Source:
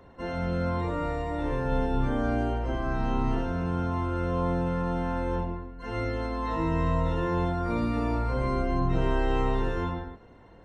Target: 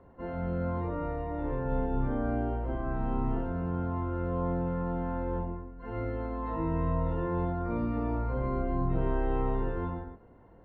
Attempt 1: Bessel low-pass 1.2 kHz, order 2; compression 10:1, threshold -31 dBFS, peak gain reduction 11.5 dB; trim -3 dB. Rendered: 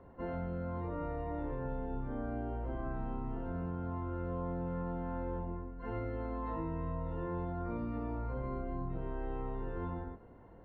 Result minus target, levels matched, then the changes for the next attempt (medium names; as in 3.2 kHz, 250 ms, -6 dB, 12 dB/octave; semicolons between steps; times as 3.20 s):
compression: peak gain reduction +11.5 dB
remove: compression 10:1, threshold -31 dBFS, peak gain reduction 11.5 dB